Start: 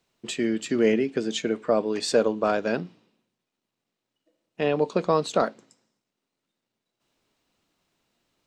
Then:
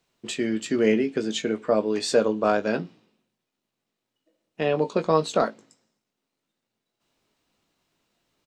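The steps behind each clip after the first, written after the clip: doubler 19 ms -8.5 dB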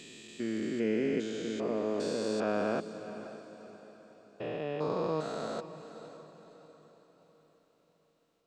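stepped spectrum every 0.4 s; diffused feedback echo 0.55 s, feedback 44%, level -12.5 dB; gain -5.5 dB

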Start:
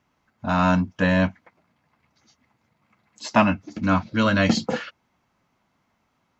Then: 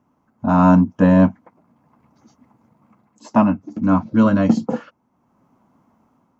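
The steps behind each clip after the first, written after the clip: graphic EQ 125/250/500/1000/2000/4000 Hz +4/+11/+3/+7/-7/-10 dB; AGC gain up to 5 dB; gain -1 dB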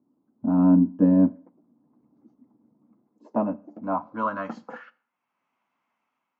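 band-pass sweep 300 Hz -> 2500 Hz, 2.97–5.18; Schroeder reverb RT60 0.48 s, combs from 30 ms, DRR 19.5 dB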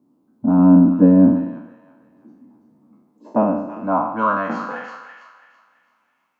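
spectral trails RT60 0.80 s; thin delay 0.33 s, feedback 34%, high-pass 1600 Hz, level -5 dB; gain +6 dB

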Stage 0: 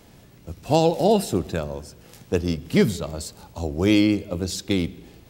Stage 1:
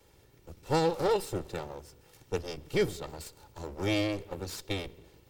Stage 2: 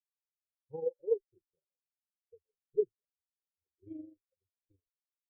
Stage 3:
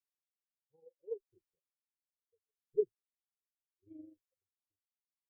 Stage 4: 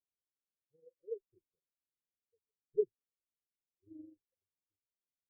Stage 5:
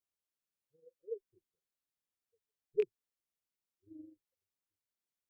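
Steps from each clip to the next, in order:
minimum comb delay 2.2 ms; gain -9 dB
AM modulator 24 Hz, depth 50%; spectral expander 4:1; gain -3 dB
dB-linear tremolo 0.72 Hz, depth 29 dB; gain -1.5 dB
steep low-pass 530 Hz
rattling part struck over -43 dBFS, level -33 dBFS

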